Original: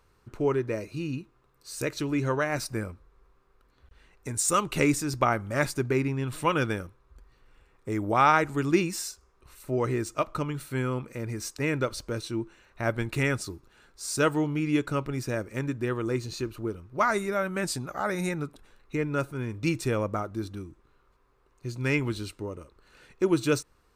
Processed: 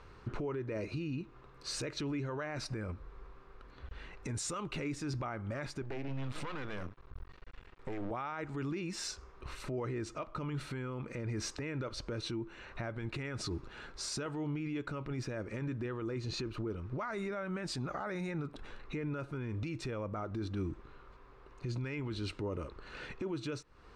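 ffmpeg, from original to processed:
-filter_complex "[0:a]asettb=1/sr,asplit=3[s0][s1][s2];[s0]atrim=end=5.824[s3];[s1]atrim=start=5.82:end=8.11,asetpts=PTS-STARTPTS,afade=t=in:d=0.004:c=qsin,afade=t=out:st=2.286:d=0.004:c=qsin,aeval=exprs='max(val(0),0)':c=same[s4];[s2]atrim=start=8.106[s5];[s3][s4]acrossfade=d=0.004:c1=hsin:c2=qsin[s6];[s6][s5]acrossfade=d=0.004:c1=qsin:c2=hsin,asettb=1/sr,asplit=3[s7][s8][s9];[s7]atrim=end=13.174[s10];[s8]atrim=start=13.17:end=14.26,asetpts=PTS-STARTPTS,afade=t=in:d=0.004:c=qsin,afade=t=out:st=1.086:d=0.004:c=qsin,acompressor=threshold=0.0158:ratio=6:attack=3.2:release=140:knee=1:detection=peak[s11];[s9]atrim=start=14.256[s12];[s10][s11]acrossfade=d=0.004:c1=hsin:c2=qsin[s13];[s13][s12]acrossfade=d=0.004:c1=qsin:c2=hsin,lowpass=4100,acompressor=threshold=0.0112:ratio=10,alimiter=level_in=6.31:limit=0.0631:level=0:latency=1:release=18,volume=0.158,volume=3.16"

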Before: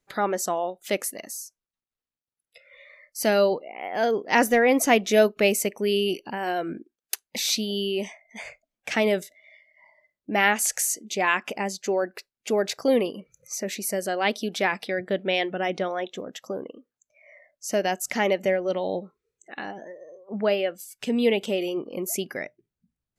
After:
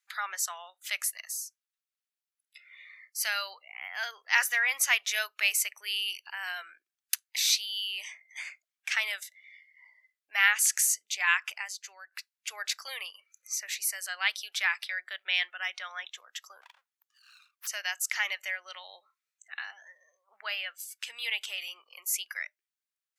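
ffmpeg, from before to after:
-filter_complex "[0:a]asplit=3[s0][s1][s2];[s0]afade=t=out:st=16.61:d=0.02[s3];[s1]aeval=exprs='abs(val(0))':c=same,afade=t=in:st=16.61:d=0.02,afade=t=out:st=17.66:d=0.02[s4];[s2]afade=t=in:st=17.66:d=0.02[s5];[s3][s4][s5]amix=inputs=3:normalize=0,asplit=2[s6][s7];[s6]atrim=end=12.12,asetpts=PTS-STARTPTS,afade=t=out:st=11.43:d=0.69:silence=0.223872[s8];[s7]atrim=start=12.12,asetpts=PTS-STARTPTS,afade=t=in:d=0.004:c=hsin:silence=0.223872[s9];[s8][s9]concat=n=2:v=0:a=1,highpass=f=1300:w=0.5412,highpass=f=1300:w=1.3066"

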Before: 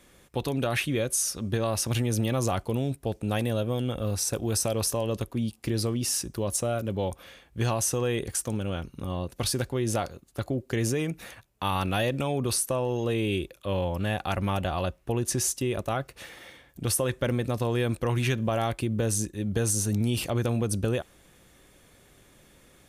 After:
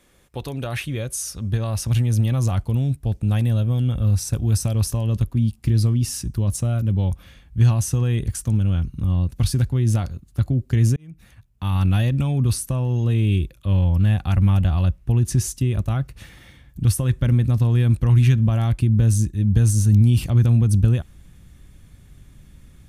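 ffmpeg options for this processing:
-filter_complex "[0:a]asplit=2[s0][s1];[s0]atrim=end=10.96,asetpts=PTS-STARTPTS,afade=t=out:st=10.956:d=0.004:c=hsin[s2];[s1]atrim=start=10.96,asetpts=PTS-STARTPTS,afade=t=in:d=0.94[s3];[s2][s3]concat=n=2:v=0:a=1,asubboost=boost=10:cutoff=150,volume=0.841"

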